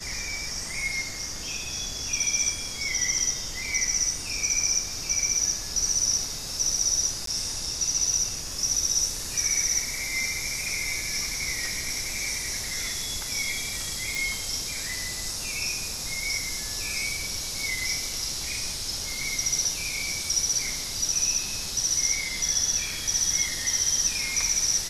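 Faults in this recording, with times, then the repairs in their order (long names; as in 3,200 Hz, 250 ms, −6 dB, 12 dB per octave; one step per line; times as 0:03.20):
0:07.26–0:07.27: drop-out 13 ms
0:14.15: click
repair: click removal
repair the gap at 0:07.26, 13 ms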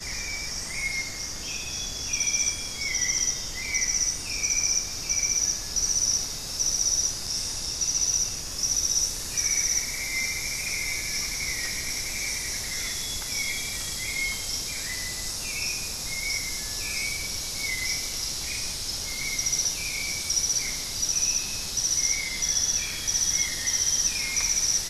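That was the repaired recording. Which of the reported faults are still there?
none of them is left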